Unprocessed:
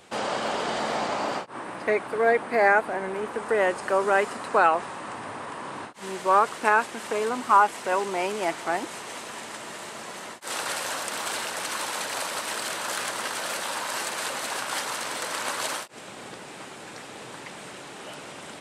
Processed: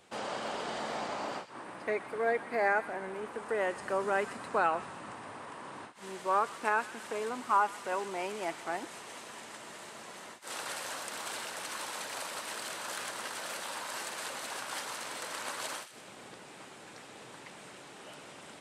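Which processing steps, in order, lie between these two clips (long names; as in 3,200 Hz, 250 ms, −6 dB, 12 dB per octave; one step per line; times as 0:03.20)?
0:03.77–0:05.14: bass and treble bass +6 dB, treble 0 dB
delay with a high-pass on its return 125 ms, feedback 50%, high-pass 1,700 Hz, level −12.5 dB
level −9 dB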